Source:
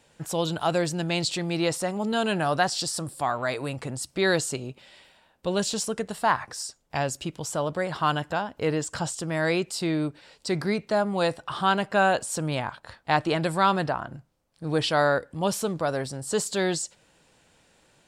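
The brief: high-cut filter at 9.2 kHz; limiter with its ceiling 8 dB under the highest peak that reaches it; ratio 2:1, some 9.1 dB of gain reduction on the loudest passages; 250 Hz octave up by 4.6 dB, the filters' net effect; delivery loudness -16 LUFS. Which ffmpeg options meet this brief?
-af "lowpass=9200,equalizer=f=250:t=o:g=7,acompressor=threshold=0.02:ratio=2,volume=8.91,alimiter=limit=0.531:level=0:latency=1"

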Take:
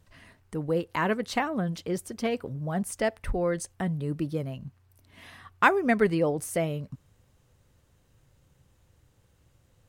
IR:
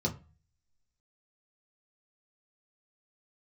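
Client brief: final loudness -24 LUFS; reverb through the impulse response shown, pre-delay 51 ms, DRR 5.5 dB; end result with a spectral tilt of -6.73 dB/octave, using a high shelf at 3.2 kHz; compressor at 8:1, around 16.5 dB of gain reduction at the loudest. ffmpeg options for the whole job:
-filter_complex "[0:a]highshelf=f=3200:g=-3.5,acompressor=threshold=0.0224:ratio=8,asplit=2[s0][s1];[1:a]atrim=start_sample=2205,adelay=51[s2];[s1][s2]afir=irnorm=-1:irlink=0,volume=0.282[s3];[s0][s3]amix=inputs=2:normalize=0,volume=2.99"

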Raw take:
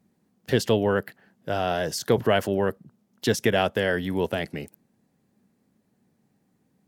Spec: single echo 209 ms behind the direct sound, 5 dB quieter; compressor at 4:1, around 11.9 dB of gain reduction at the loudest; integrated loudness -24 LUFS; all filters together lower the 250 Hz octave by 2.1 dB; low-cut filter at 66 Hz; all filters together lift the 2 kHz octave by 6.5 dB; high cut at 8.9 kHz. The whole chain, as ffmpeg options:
-af "highpass=66,lowpass=8900,equalizer=f=250:t=o:g=-3,equalizer=f=2000:t=o:g=8.5,acompressor=threshold=0.0316:ratio=4,aecho=1:1:209:0.562,volume=2.82"

